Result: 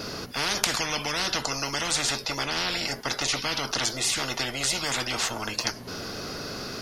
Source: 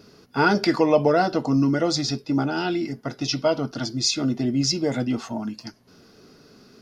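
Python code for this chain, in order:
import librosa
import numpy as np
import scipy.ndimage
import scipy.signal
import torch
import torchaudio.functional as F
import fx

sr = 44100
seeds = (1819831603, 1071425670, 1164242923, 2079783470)

y = fx.spectral_comp(x, sr, ratio=10.0)
y = y * librosa.db_to_amplitude(5.5)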